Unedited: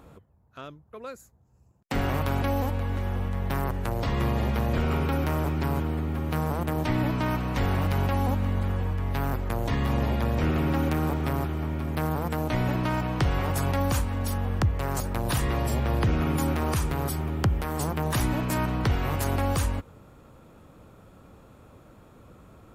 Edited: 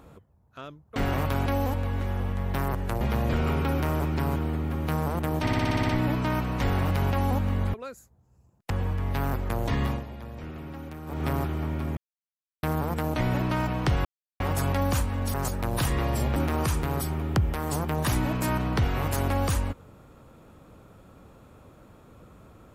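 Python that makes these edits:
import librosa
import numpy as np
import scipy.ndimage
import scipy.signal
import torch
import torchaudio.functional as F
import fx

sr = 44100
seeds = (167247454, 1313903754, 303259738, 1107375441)

y = fx.edit(x, sr, fx.move(start_s=0.96, length_s=0.96, to_s=8.7),
    fx.cut(start_s=3.97, length_s=0.48),
    fx.stutter(start_s=6.85, slice_s=0.06, count=9),
    fx.fade_down_up(start_s=9.84, length_s=1.42, db=-14.0, fade_s=0.2),
    fx.insert_silence(at_s=11.97, length_s=0.66),
    fx.insert_silence(at_s=13.39, length_s=0.35),
    fx.cut(start_s=14.33, length_s=0.53),
    fx.cut(start_s=15.88, length_s=0.56), tone=tone)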